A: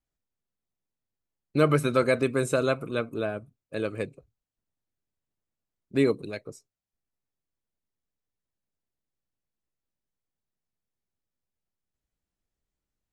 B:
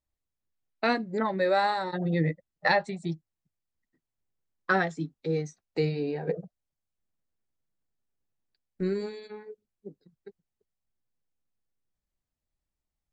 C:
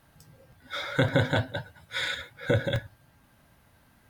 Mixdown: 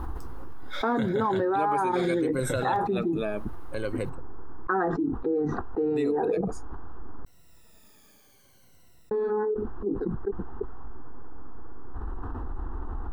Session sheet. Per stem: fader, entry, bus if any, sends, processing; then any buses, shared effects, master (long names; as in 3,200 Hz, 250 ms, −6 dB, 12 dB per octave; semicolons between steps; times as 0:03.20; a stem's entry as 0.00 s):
−7.5 dB, 0.00 s, no send, rippled gain that drifts along the octave scale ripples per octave 2, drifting −0.63 Hz, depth 15 dB; automatic ducking −7 dB, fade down 1.00 s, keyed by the second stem
0.0 dB, 0.00 s, muted 0:07.25–0:09.11, no send, low-pass filter 1,500 Hz 24 dB per octave; phaser with its sweep stopped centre 590 Hz, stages 6; envelope flattener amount 70%
−14.5 dB, 0.00 s, no send, no processing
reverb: not used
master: envelope flattener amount 70%